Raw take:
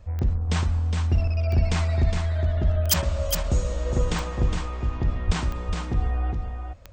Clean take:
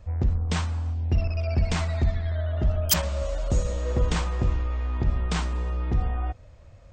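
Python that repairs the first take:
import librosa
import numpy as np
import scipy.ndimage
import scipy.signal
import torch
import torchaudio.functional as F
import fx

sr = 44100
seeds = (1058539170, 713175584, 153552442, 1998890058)

y = fx.fix_declip(x, sr, threshold_db=-10.0)
y = fx.fix_declick_ar(y, sr, threshold=10.0)
y = fx.highpass(y, sr, hz=140.0, slope=24, at=(5.26, 5.38), fade=0.02)
y = fx.fix_echo_inverse(y, sr, delay_ms=412, level_db=-5.5)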